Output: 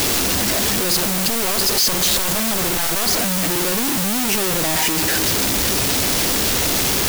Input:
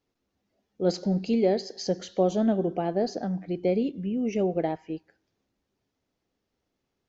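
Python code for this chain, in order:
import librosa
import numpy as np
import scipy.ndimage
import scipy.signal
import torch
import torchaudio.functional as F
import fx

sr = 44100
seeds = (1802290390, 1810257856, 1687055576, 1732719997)

y = np.sign(x) * np.sqrt(np.mean(np.square(x)))
y = fx.low_shelf(y, sr, hz=69.0, db=2.5)
y = fx.overflow_wrap(y, sr, gain_db=28.5, at=(0.95, 3.18))
y = fx.quant_dither(y, sr, seeds[0], bits=6, dither='triangular')
y = fx.high_shelf(y, sr, hz=2400.0, db=8.5)
y = y * librosa.db_to_amplitude(5.5)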